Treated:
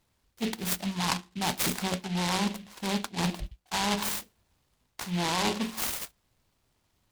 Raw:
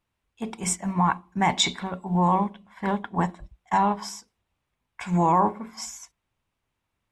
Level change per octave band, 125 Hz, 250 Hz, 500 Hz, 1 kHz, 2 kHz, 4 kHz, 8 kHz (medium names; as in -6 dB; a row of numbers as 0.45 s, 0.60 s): -6.0 dB, -4.5 dB, -5.5 dB, -10.0 dB, -0.5 dB, 0.0 dB, -1.0 dB